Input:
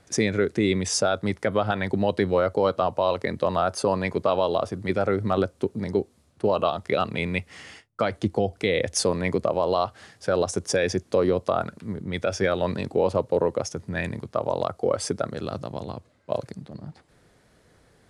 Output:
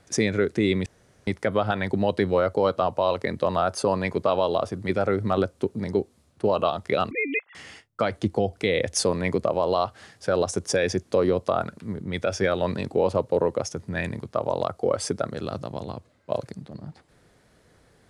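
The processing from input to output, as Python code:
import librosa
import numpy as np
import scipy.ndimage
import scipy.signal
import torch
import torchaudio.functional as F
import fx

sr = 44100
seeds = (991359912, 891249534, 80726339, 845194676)

y = fx.sine_speech(x, sr, at=(7.11, 7.55))
y = fx.edit(y, sr, fx.room_tone_fill(start_s=0.86, length_s=0.41), tone=tone)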